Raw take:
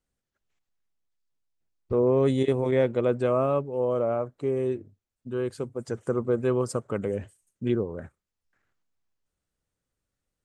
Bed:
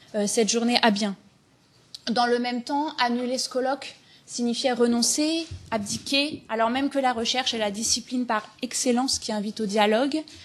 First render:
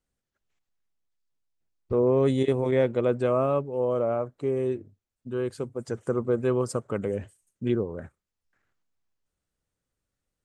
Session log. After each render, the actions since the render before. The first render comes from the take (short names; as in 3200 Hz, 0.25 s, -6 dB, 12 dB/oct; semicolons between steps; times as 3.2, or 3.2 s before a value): nothing audible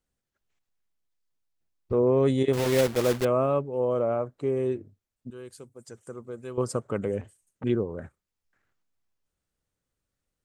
2.53–3.25 block floating point 3-bit; 5.3–6.58 pre-emphasis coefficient 0.8; 7.21–7.64 core saturation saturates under 960 Hz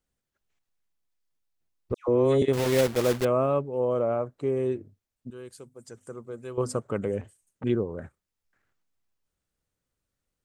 1.94–2.42 dispersion lows, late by 0.141 s, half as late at 1600 Hz; 5.49–6.8 notches 50/100/150/200/250 Hz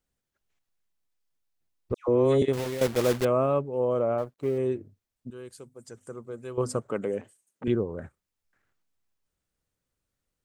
2.41–2.81 fade out, to -14.5 dB; 4.18–4.58 G.711 law mismatch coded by A; 6.89–7.68 HPF 200 Hz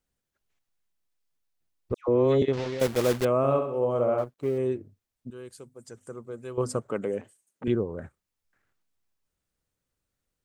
2.01–2.8 LPF 5700 Hz 24 dB/oct; 3.37–4.24 flutter echo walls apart 11.3 m, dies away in 0.62 s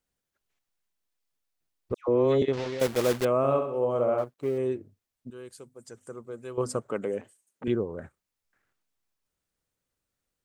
low shelf 180 Hz -5 dB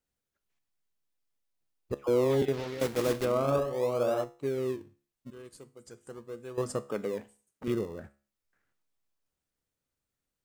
in parallel at -12 dB: decimation with a swept rate 38×, swing 100% 0.41 Hz; on the sum: resonator 70 Hz, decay 0.39 s, harmonics all, mix 50%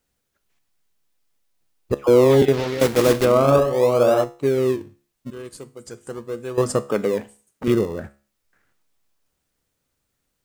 gain +12 dB